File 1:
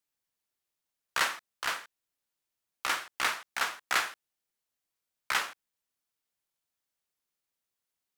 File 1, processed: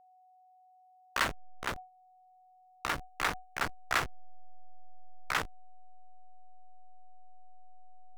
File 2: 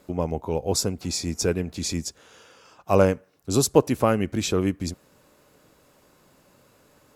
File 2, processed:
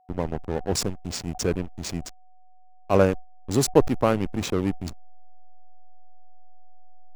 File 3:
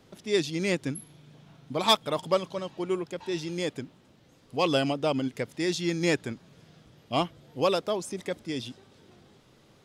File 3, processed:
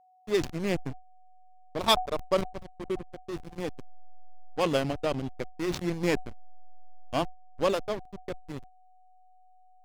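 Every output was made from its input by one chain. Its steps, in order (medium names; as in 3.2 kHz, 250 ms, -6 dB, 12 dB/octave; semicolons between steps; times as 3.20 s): hysteresis with a dead band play -22 dBFS; whistle 740 Hz -59 dBFS; decay stretcher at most 140 dB/s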